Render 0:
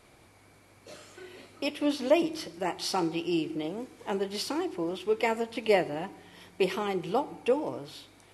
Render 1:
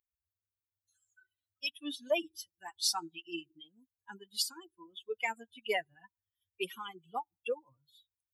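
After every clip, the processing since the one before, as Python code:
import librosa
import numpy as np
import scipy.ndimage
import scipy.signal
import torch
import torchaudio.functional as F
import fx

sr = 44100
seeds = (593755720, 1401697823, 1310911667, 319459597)

y = fx.bin_expand(x, sr, power=3.0)
y = fx.highpass(y, sr, hz=880.0, slope=6)
y = fx.high_shelf(y, sr, hz=3500.0, db=11.0)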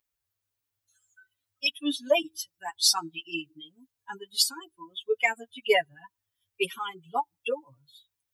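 y = x + 0.78 * np.pad(x, (int(7.1 * sr / 1000.0), 0))[:len(x)]
y = F.gain(torch.from_numpy(y), 7.0).numpy()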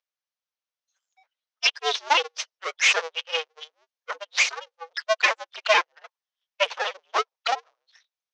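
y = fx.cycle_switch(x, sr, every=2, mode='inverted')
y = fx.leveller(y, sr, passes=2)
y = scipy.signal.sosfilt(scipy.signal.cheby1(4, 1.0, [490.0, 6100.0], 'bandpass', fs=sr, output='sos'), y)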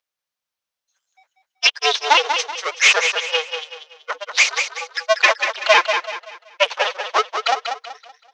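y = fx.echo_feedback(x, sr, ms=190, feedback_pct=35, wet_db=-7)
y = F.gain(torch.from_numpy(y), 6.0).numpy()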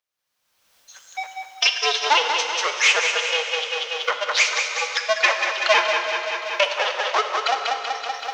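y = fx.recorder_agc(x, sr, target_db=-9.5, rise_db_per_s=40.0, max_gain_db=30)
y = fx.rev_plate(y, sr, seeds[0], rt60_s=2.6, hf_ratio=1.0, predelay_ms=0, drr_db=5.5)
y = F.gain(torch.from_numpy(y), -4.0).numpy()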